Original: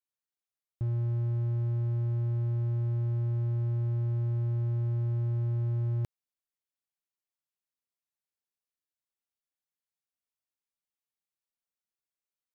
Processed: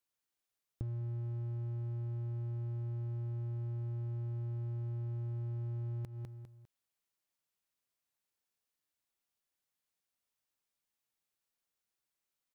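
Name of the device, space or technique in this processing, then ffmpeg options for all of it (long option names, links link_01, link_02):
serial compression, leveller first: -af "aecho=1:1:201|402|603:0.2|0.0658|0.0217,acompressor=threshold=-37dB:ratio=2,acompressor=threshold=-42dB:ratio=4,volume=4.5dB"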